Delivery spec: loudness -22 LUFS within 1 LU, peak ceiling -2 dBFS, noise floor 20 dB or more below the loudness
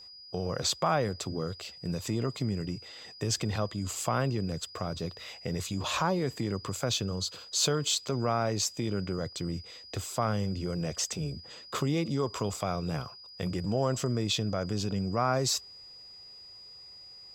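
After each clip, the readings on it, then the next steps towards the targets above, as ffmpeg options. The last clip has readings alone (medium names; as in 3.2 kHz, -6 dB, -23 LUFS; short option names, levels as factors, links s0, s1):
steady tone 4.9 kHz; tone level -47 dBFS; loudness -31.5 LUFS; peak level -13.5 dBFS; loudness target -22.0 LUFS
-> -af "bandreject=f=4900:w=30"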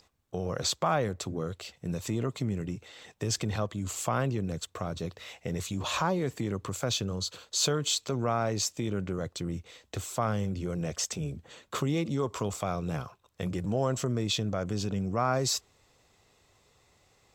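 steady tone not found; loudness -31.5 LUFS; peak level -13.5 dBFS; loudness target -22.0 LUFS
-> -af "volume=2.99"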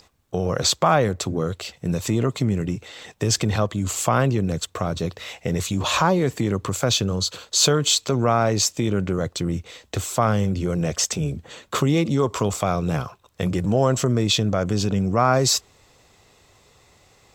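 loudness -22.0 LUFS; peak level -4.0 dBFS; noise floor -57 dBFS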